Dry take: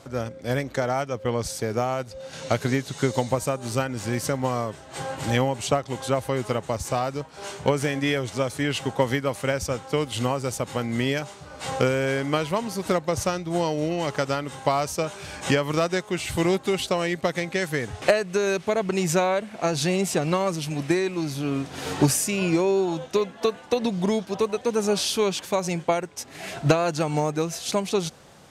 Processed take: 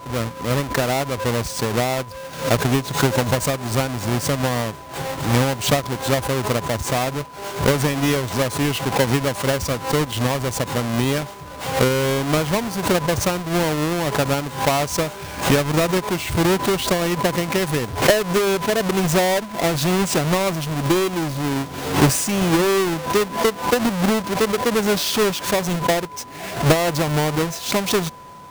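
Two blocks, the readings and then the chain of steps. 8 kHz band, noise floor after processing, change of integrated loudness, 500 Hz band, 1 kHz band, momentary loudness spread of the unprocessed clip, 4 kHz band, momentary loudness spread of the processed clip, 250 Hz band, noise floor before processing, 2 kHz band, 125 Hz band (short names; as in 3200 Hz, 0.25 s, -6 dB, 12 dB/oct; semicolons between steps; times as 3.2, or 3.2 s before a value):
+5.5 dB, -35 dBFS, +5.0 dB, +3.5 dB, +5.5 dB, 6 LU, +7.0 dB, 6 LU, +5.0 dB, -45 dBFS, +5.5 dB, +6.0 dB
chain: half-waves squared off; whine 1000 Hz -39 dBFS; backwards sustainer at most 120 dB/s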